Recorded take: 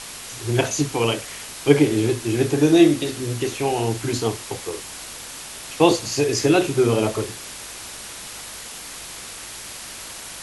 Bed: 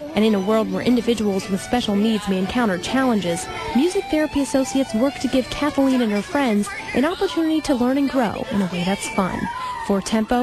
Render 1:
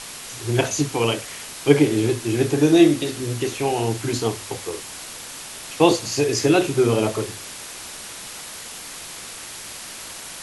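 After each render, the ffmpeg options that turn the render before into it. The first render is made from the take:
-af "bandreject=f=50:t=h:w=4,bandreject=f=100:t=h:w=4"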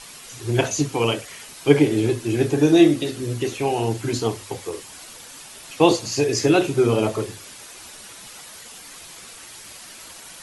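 -af "afftdn=nr=8:nf=-37"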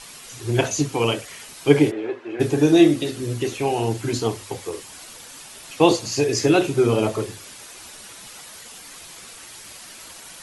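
-filter_complex "[0:a]asplit=3[a][b][c];[a]afade=t=out:st=1.9:d=0.02[d];[b]asuperpass=centerf=960:order=4:qfactor=0.6,afade=t=in:st=1.9:d=0.02,afade=t=out:st=2.39:d=0.02[e];[c]afade=t=in:st=2.39:d=0.02[f];[d][e][f]amix=inputs=3:normalize=0"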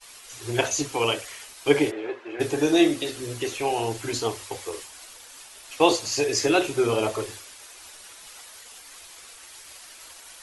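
-af "agate=range=-33dB:threshold=-36dB:ratio=3:detection=peak,equalizer=f=170:w=0.88:g=-14"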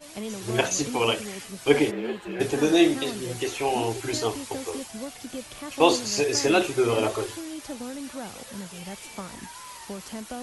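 -filter_complex "[1:a]volume=-17.5dB[a];[0:a][a]amix=inputs=2:normalize=0"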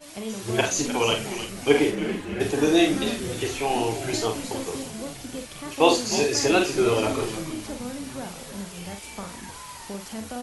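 -filter_complex "[0:a]asplit=2[a][b];[b]adelay=45,volume=-6dB[c];[a][c]amix=inputs=2:normalize=0,asplit=2[d][e];[e]asplit=5[f][g][h][i][j];[f]adelay=308,afreqshift=-110,volume=-11.5dB[k];[g]adelay=616,afreqshift=-220,volume=-18.2dB[l];[h]adelay=924,afreqshift=-330,volume=-25dB[m];[i]adelay=1232,afreqshift=-440,volume=-31.7dB[n];[j]adelay=1540,afreqshift=-550,volume=-38.5dB[o];[k][l][m][n][o]amix=inputs=5:normalize=0[p];[d][p]amix=inputs=2:normalize=0"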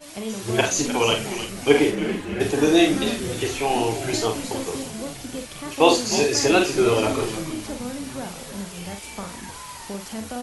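-af "volume=2.5dB,alimiter=limit=-2dB:level=0:latency=1"

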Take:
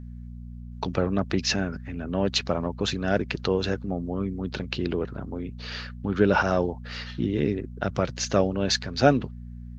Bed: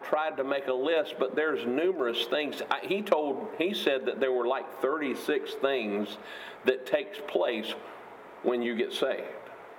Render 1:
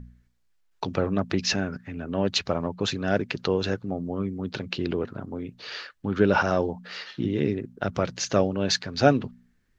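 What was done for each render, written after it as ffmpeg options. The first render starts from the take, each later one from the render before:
-af "bandreject=f=60:t=h:w=4,bandreject=f=120:t=h:w=4,bandreject=f=180:t=h:w=4,bandreject=f=240:t=h:w=4"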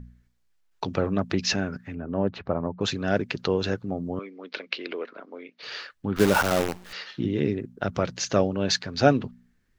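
-filter_complex "[0:a]asettb=1/sr,asplit=3[a][b][c];[a]atrim=end=1.954[d];[b]atrim=start=1.95:end=2.81,asetpts=PTS-STARTPTS,afade=t=in:d=0.004:c=qsin,afade=t=out:st=0.856:d=0.004:c=qsin,lowpass=1.3k[e];[c]atrim=start=2.806[f];[d][e]acrossfade=d=0.004:c1=hsin:c2=qsin[g];[g][f]acrossfade=d=0.004:c1=qsin:c2=hsin,asettb=1/sr,asplit=3[h][i][j];[h]atrim=end=4.194[k];[i]atrim=start=4.19:end=5.63,asetpts=PTS-STARTPTS,afade=t=in:d=0.004:c=qsin,afade=t=out:st=1.436:d=0.004:c=qsin,highpass=f=350:w=0.5412,highpass=f=350:w=1.3066,equalizer=f=370:t=q:w=4:g=-6,equalizer=f=820:t=q:w=4:g=-6,equalizer=f=2.2k:t=q:w=4:g=8,lowpass=f=5.2k:w=0.5412,lowpass=f=5.2k:w=1.3066[l];[j]atrim=start=5.626[m];[k][l]acrossfade=d=0.004:c1=hsin:c2=qsin[n];[n][m]acrossfade=d=0.004:c1=qsin:c2=hsin,asettb=1/sr,asplit=3[o][p][q];[o]atrim=end=6.164[r];[p]atrim=start=6.16:end=6.93,asetpts=PTS-STARTPTS,afade=t=in:d=0.004:c=qsin,afade=t=out:st=0.766:d=0.004:c=qsin,acrusher=bits=5:dc=4:mix=0:aa=0.000001[s];[q]atrim=start=6.926[t];[r][s]acrossfade=d=0.004:c1=hsin:c2=qsin[u];[u][t]acrossfade=d=0.004:c1=qsin:c2=hsin"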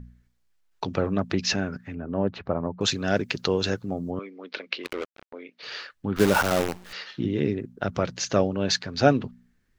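-filter_complex "[0:a]asettb=1/sr,asplit=3[a][b][c];[a]atrim=end=2.794[d];[b]atrim=start=2.79:end=4.11,asetpts=PTS-STARTPTS,afade=t=in:d=0.004:c=qsin,afade=t=out:st=1.316:d=0.004:c=qsin,highshelf=f=4.9k:g=12[e];[c]atrim=start=4.106[f];[d][e]acrossfade=d=0.004:c1=hsin:c2=qsin[g];[g][f]acrossfade=d=0.004:c1=qsin:c2=hsin,asplit=3[h][i][j];[h]afade=t=out:st=4.83:d=0.02[k];[i]acrusher=bits=4:mix=0:aa=0.5,afade=t=in:st=4.83:d=0.02,afade=t=out:st=5.32:d=0.02[l];[j]afade=t=in:st=5.32:d=0.02[m];[k][l][m]amix=inputs=3:normalize=0"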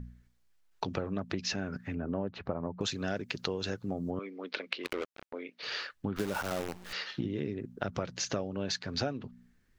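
-af "acompressor=threshold=-30dB:ratio=10"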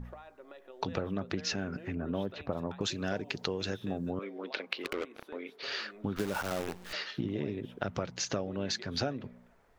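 -filter_complex "[1:a]volume=-22dB[a];[0:a][a]amix=inputs=2:normalize=0"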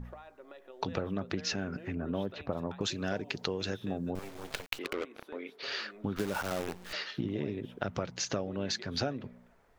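-filter_complex "[0:a]asettb=1/sr,asplit=3[a][b][c];[a]atrim=end=4.154[d];[b]atrim=start=4.15:end=4.79,asetpts=PTS-STARTPTS,afade=t=in:d=0.004:c=qsin,afade=t=out:st=0.636:d=0.004:c=qsin,acrusher=bits=5:dc=4:mix=0:aa=0.000001[e];[c]atrim=start=4.786[f];[d][e]acrossfade=d=0.004:c1=hsin:c2=qsin[g];[g][f]acrossfade=d=0.004:c1=qsin:c2=hsin"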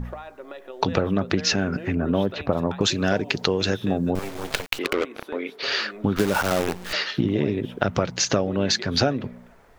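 -af "volume=12dB,alimiter=limit=-2dB:level=0:latency=1"

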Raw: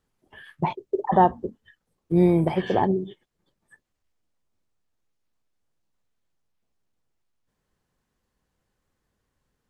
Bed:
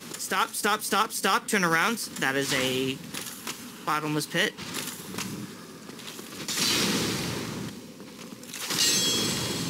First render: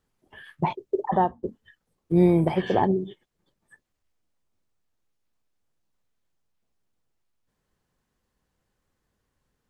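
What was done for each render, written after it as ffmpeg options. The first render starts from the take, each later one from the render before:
-filter_complex "[0:a]asplit=2[a][b];[a]atrim=end=1.43,asetpts=PTS-STARTPTS,afade=t=out:st=0.98:d=0.45:silence=0.177828[c];[b]atrim=start=1.43,asetpts=PTS-STARTPTS,afade=t=in:d=0.004:c=hsin:silence=0.177828[d];[c][d]concat=n=2:v=0:a=1"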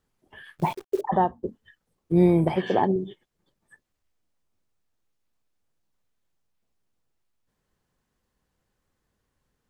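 -filter_complex "[0:a]asettb=1/sr,asplit=3[a][b][c];[a]atrim=end=0.584[d];[b]atrim=start=0.58:end=1.01,asetpts=PTS-STARTPTS,afade=t=in:d=0.004:c=qsin,afade=t=out:st=0.426:d=0.004:c=qsin,acrusher=bits=8:dc=4:mix=0:aa=0.000001[e];[c]atrim=start=1.006[f];[d][e]acrossfade=d=0.004:c1=hsin:c2=qsin[g];[g][f]acrossfade=d=0.004:c1=qsin:c2=hsin,asettb=1/sr,asplit=3[h][i][j];[h]atrim=end=2.564[k];[i]atrim=start=2.56:end=2.96,asetpts=PTS-STARTPTS,afade=t=in:d=0.004:c=qsin,afade=t=out:st=0.396:d=0.004:c=qsin,highpass=150[l];[j]atrim=start=2.956[m];[k][l]acrossfade=d=0.004:c1=hsin:c2=qsin[n];[n][m]acrossfade=d=0.004:c1=qsin:c2=hsin"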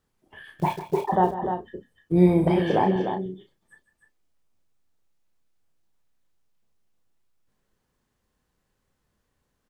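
-filter_complex "[0:a]asplit=2[a][b];[b]adelay=33,volume=-7dB[c];[a][c]amix=inputs=2:normalize=0,asplit=2[d][e];[e]aecho=0:1:149|300:0.2|0.422[f];[d][f]amix=inputs=2:normalize=0"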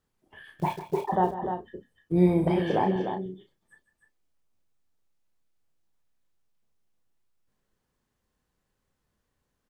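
-af "volume=-3.5dB"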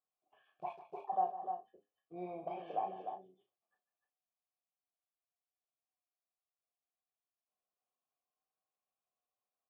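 -filter_complex "[0:a]asplit=3[a][b][c];[a]bandpass=f=730:t=q:w=8,volume=0dB[d];[b]bandpass=f=1.09k:t=q:w=8,volume=-6dB[e];[c]bandpass=f=2.44k:t=q:w=8,volume=-9dB[f];[d][e][f]amix=inputs=3:normalize=0,flanger=delay=6.4:depth=4.3:regen=77:speed=0.35:shape=sinusoidal"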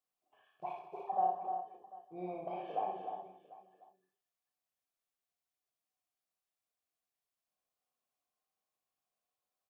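-af "aecho=1:1:61|134|222|745:0.708|0.168|0.141|0.112"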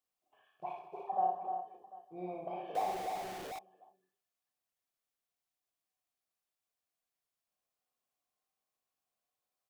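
-filter_complex "[0:a]asettb=1/sr,asplit=3[a][b][c];[a]atrim=end=2.754[d];[b]atrim=start=2.75:end=3.59,asetpts=PTS-STARTPTS,afade=t=in:d=0.004:c=qsin,afade=t=out:st=0.836:d=0.004:c=qsin,aeval=exprs='val(0)+0.5*0.0112*sgn(val(0))':c=same[e];[c]atrim=start=3.586[f];[d][e]acrossfade=d=0.004:c1=hsin:c2=qsin[g];[g][f]acrossfade=d=0.004:c1=qsin:c2=hsin"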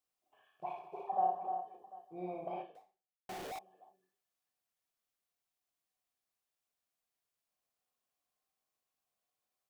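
-filter_complex "[0:a]asplit=2[a][b];[a]atrim=end=3.29,asetpts=PTS-STARTPTS,afade=t=out:st=2.61:d=0.68:c=exp[c];[b]atrim=start=3.29,asetpts=PTS-STARTPTS,afade=t=in:d=0.004:c=hsin[d];[c][d]concat=n=2:v=0:a=1"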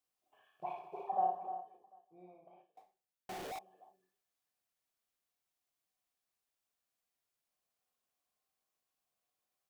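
-filter_complex "[0:a]asplit=2[a][b];[a]atrim=end=2.77,asetpts=PTS-STARTPTS,afade=t=out:st=1.15:d=1.62:c=qua:silence=0.0749894[c];[b]atrim=start=2.77,asetpts=PTS-STARTPTS,afade=t=in:d=0.004:c=hsin:silence=0.0749894[d];[c][d]concat=n=2:v=0:a=1"

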